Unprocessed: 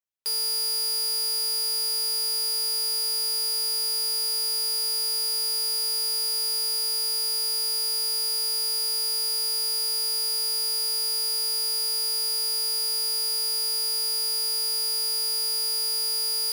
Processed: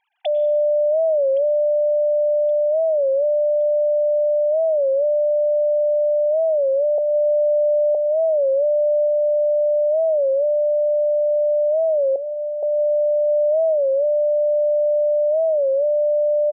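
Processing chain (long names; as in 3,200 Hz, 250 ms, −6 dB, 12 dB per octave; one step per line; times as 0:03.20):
three sine waves on the formant tracks
0:06.98–0:07.95: Butterworth high-pass 230 Hz 96 dB per octave
0:12.16–0:12.63: low shelf with overshoot 620 Hz −9.5 dB, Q 3
repeating echo 1,119 ms, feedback 43%, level −21 dB
dense smooth reverb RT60 1 s, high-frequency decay 0.8×, pre-delay 85 ms, DRR 16 dB
wow of a warped record 33 1/3 rpm, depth 160 cents
level +7.5 dB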